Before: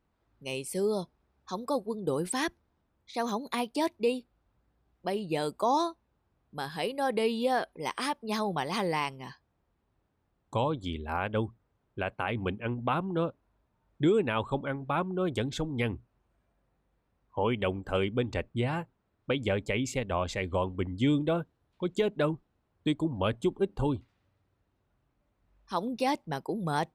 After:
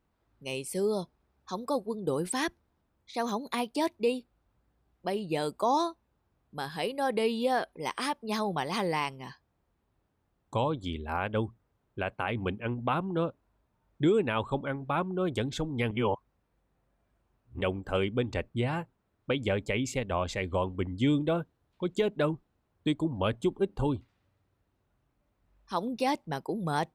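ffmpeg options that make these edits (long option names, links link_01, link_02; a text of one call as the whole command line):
ffmpeg -i in.wav -filter_complex "[0:a]asplit=3[link_01][link_02][link_03];[link_01]atrim=end=15.912[link_04];[link_02]atrim=start=15.908:end=17.612,asetpts=PTS-STARTPTS,areverse[link_05];[link_03]atrim=start=17.608[link_06];[link_04][link_05]acrossfade=duration=0.004:curve1=hsin:curve2=hsin[link_07];[link_07][link_06]acrossfade=duration=0.004:curve1=hsin:curve2=hsin" out.wav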